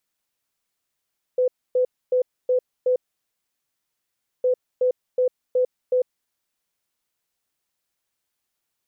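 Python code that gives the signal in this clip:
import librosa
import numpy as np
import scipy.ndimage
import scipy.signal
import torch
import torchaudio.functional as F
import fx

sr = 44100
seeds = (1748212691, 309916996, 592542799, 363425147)

y = fx.beep_pattern(sr, wave='sine', hz=504.0, on_s=0.1, off_s=0.27, beeps=5, pause_s=1.48, groups=2, level_db=-16.0)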